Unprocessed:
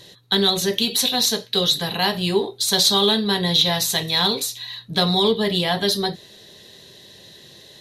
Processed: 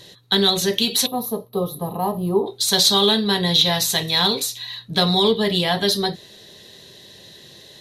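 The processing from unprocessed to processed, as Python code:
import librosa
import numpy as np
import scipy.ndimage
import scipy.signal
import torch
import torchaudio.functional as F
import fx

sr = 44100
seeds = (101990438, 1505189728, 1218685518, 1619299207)

y = fx.spec_box(x, sr, start_s=1.06, length_s=1.41, low_hz=1300.0, high_hz=10000.0, gain_db=-26)
y = y * librosa.db_to_amplitude(1.0)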